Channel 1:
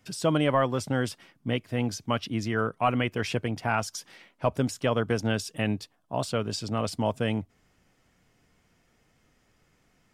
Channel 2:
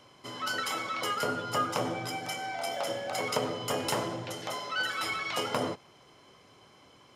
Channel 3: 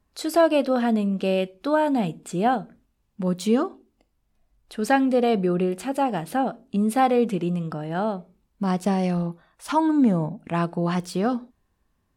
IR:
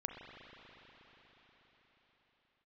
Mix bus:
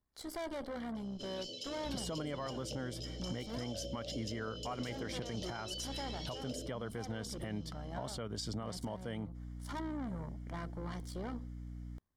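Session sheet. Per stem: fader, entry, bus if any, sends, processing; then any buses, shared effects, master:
-3.5 dB, 1.85 s, bus A, no send, hum 60 Hz, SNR 12 dB
-4.5 dB, 0.95 s, no bus, no send, Chebyshev band-stop 610–2800 Hz, order 4; resonant high shelf 7.9 kHz -12.5 dB, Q 1.5; compression 4:1, threshold -38 dBFS, peak gain reduction 10.5 dB
-9.0 dB, 0.00 s, bus A, no send, AM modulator 66 Hz, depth 40%; valve stage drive 29 dB, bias 0.7
bus A: 0.0 dB, Butterworth band-stop 2.6 kHz, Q 5.3; compression 6:1, threshold -34 dBFS, peak gain reduction 12 dB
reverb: none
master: peak limiter -30 dBFS, peak gain reduction 9.5 dB

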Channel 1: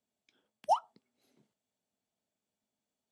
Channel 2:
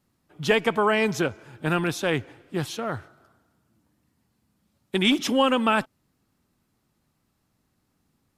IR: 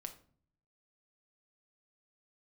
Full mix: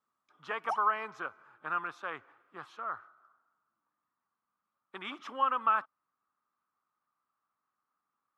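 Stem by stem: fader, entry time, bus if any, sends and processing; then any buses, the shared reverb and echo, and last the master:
-5.0 dB, 0.00 s, no send, auto duck -8 dB, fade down 1.70 s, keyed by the second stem
+2.0 dB, 0.00 s, no send, band-pass filter 1.2 kHz, Q 6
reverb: none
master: none

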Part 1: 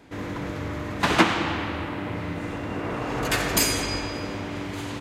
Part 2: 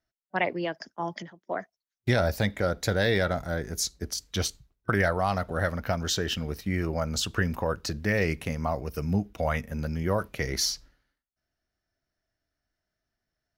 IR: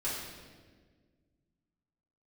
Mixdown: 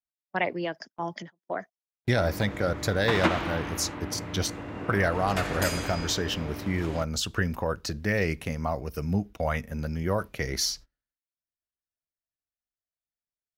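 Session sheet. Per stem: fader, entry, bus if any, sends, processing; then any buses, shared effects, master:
-6.0 dB, 2.05 s, no send, treble shelf 4.4 kHz -7 dB
-0.5 dB, 0.00 s, no send, none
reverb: none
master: gate -42 dBFS, range -21 dB

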